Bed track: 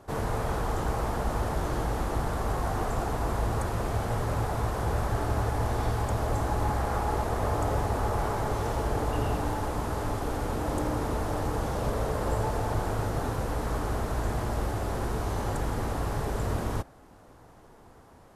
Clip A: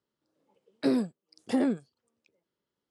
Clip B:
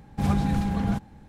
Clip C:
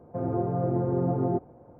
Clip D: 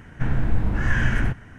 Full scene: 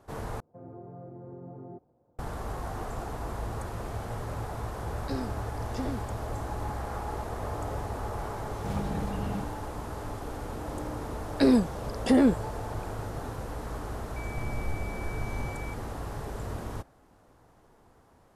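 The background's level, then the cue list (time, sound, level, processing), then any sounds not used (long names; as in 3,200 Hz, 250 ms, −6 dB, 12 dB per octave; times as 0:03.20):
bed track −6.5 dB
0:00.40: overwrite with C −16.5 dB + brickwall limiter −19 dBFS
0:04.25: mix in A −10 dB + low-pass with resonance 6,200 Hz
0:08.46: mix in B −10 dB
0:10.57: mix in A −11.5 dB + boost into a limiter +18.5 dB
0:14.16: mix in D −15 dB + switching amplifier with a slow clock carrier 2,300 Hz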